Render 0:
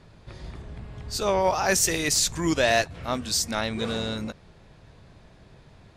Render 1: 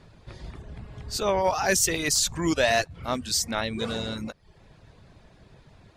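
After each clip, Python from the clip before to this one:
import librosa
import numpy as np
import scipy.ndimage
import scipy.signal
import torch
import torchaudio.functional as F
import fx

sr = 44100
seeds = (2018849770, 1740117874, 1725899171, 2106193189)

y = fx.dereverb_blind(x, sr, rt60_s=0.55)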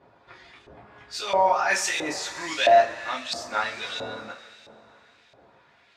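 y = fx.rev_double_slope(x, sr, seeds[0], early_s=0.21, late_s=3.2, knee_db=-21, drr_db=-4.5)
y = fx.filter_lfo_bandpass(y, sr, shape='saw_up', hz=1.5, low_hz=620.0, high_hz=3300.0, q=1.1)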